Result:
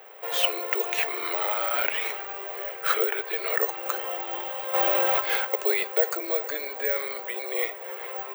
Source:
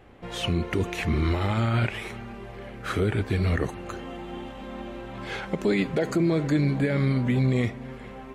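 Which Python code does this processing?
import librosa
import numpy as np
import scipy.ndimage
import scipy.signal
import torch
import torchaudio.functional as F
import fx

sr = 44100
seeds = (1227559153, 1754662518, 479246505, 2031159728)

y = fx.cheby1_lowpass(x, sr, hz=3500.0, order=2, at=(2.94, 3.48))
y = fx.rider(y, sr, range_db=4, speed_s=0.5)
y = scipy.signal.sosfilt(scipy.signal.butter(8, 430.0, 'highpass', fs=sr, output='sos'), y)
y = (np.kron(scipy.signal.resample_poly(y, 1, 2), np.eye(2)[0]) * 2)[:len(y)]
y = fx.env_flatten(y, sr, amount_pct=70, at=(4.73, 5.19), fade=0.02)
y = F.gain(torch.from_numpy(y), 3.0).numpy()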